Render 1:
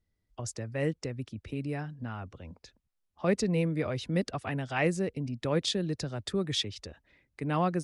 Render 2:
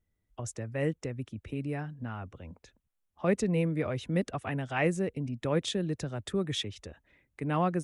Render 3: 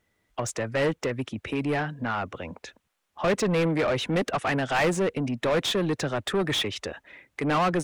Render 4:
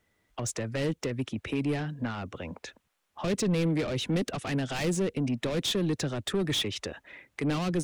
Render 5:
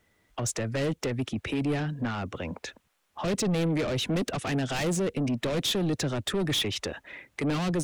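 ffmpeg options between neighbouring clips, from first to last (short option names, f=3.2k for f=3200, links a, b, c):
-af "equalizer=f=4.7k:t=o:w=0.52:g=-10.5"
-filter_complex "[0:a]asplit=2[a][b];[b]highpass=f=720:p=1,volume=25dB,asoftclip=type=tanh:threshold=-16dB[c];[a][c]amix=inputs=2:normalize=0,lowpass=f=3.4k:p=1,volume=-6dB"
-filter_complex "[0:a]acrossover=split=390|3000[a][b][c];[b]acompressor=threshold=-39dB:ratio=5[d];[a][d][c]amix=inputs=3:normalize=0"
-af "asoftclip=type=tanh:threshold=-27dB,volume=4.5dB"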